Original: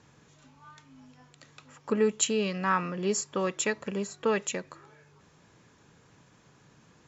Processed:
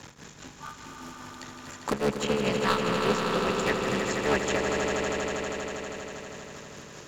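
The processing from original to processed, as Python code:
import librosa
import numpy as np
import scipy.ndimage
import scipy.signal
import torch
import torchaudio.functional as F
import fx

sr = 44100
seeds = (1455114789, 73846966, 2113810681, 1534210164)

y = fx.cycle_switch(x, sr, every=3, mode='muted')
y = fx.env_lowpass_down(y, sr, base_hz=2600.0, full_db=-25.5)
y = fx.high_shelf(y, sr, hz=2700.0, db=9.5)
y = 10.0 ** (-19.0 / 20.0) * (np.abs((y / 10.0 ** (-19.0 / 20.0) + 3.0) % 4.0 - 2.0) - 1.0)
y = fx.tremolo_shape(y, sr, shape='triangle', hz=4.9, depth_pct=95)
y = fx.echo_swell(y, sr, ms=80, loudest=5, wet_db=-8.0)
y = fx.band_squash(y, sr, depth_pct=40)
y = y * 10.0 ** (5.5 / 20.0)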